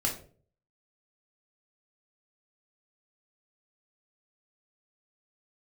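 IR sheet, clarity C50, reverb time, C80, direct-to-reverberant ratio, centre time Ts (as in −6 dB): 9.0 dB, 0.45 s, 14.0 dB, −0.5 dB, 22 ms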